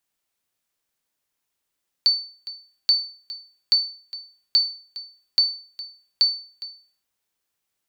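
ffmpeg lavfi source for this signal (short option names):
-f lavfi -i "aevalsrc='0.316*(sin(2*PI*4520*mod(t,0.83))*exp(-6.91*mod(t,0.83)/0.43)+0.141*sin(2*PI*4520*max(mod(t,0.83)-0.41,0))*exp(-6.91*max(mod(t,0.83)-0.41,0)/0.43))':d=4.98:s=44100"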